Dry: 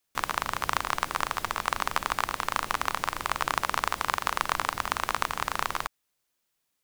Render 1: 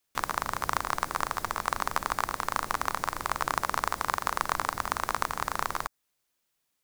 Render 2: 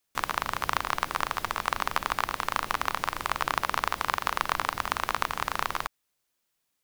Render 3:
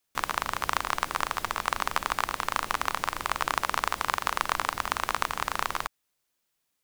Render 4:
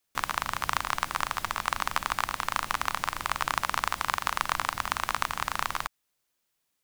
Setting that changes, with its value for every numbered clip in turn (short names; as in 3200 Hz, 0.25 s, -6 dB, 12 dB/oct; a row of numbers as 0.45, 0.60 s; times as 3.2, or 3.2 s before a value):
dynamic EQ, frequency: 2900, 7900, 130, 420 Hz